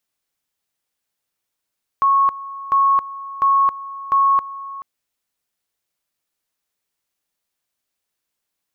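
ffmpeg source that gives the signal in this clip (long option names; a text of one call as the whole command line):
ffmpeg -f lavfi -i "aevalsrc='pow(10,(-11.5-17*gte(mod(t,0.7),0.27))/20)*sin(2*PI*1100*t)':duration=2.8:sample_rate=44100" out.wav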